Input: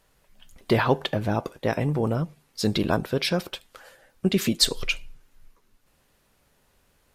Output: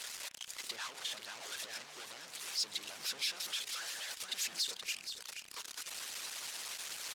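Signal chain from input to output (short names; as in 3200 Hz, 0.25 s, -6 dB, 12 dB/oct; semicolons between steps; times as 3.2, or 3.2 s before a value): zero-crossing step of -22.5 dBFS; high shelf 6400 Hz -8 dB; limiter -16 dBFS, peak gain reduction 9.5 dB; soft clip -27.5 dBFS, distortion -10 dB; band-pass 6300 Hz, Q 0.75; feedback echo 0.476 s, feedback 34%, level -8 dB; harmonic-percussive split harmonic -16 dB; pre-echo 34 ms -15 dB; on a send at -19 dB: reverb, pre-delay 38 ms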